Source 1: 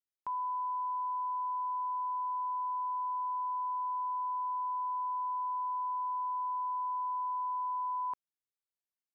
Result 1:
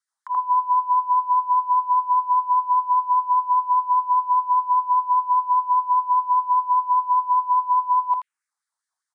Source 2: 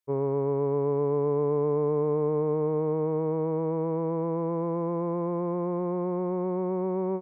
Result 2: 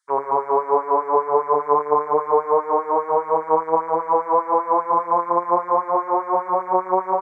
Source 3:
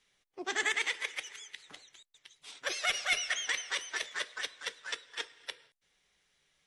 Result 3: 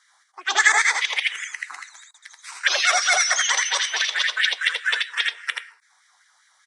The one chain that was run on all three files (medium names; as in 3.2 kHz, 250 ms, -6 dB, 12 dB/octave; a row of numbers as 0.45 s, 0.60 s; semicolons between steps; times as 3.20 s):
resampled via 22.05 kHz; touch-sensitive phaser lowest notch 450 Hz, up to 2.9 kHz, full sweep at -29 dBFS; delay 81 ms -3 dB; LFO high-pass sine 5 Hz 780–1900 Hz; normalise loudness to -20 LUFS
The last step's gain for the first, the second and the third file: +12.0 dB, +15.0 dB, +15.0 dB